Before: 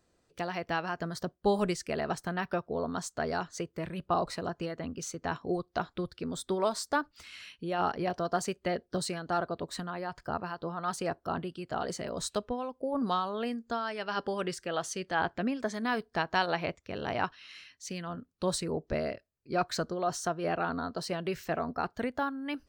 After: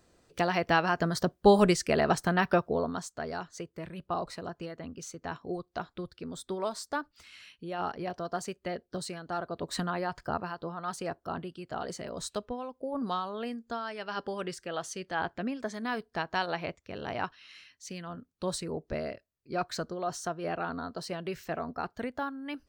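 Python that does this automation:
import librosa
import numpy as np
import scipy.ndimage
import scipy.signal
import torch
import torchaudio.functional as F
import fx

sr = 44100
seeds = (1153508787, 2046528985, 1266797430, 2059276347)

y = fx.gain(x, sr, db=fx.line((2.63, 7.0), (3.11, -4.0), (9.44, -4.0), (9.82, 6.0), (10.82, -2.5)))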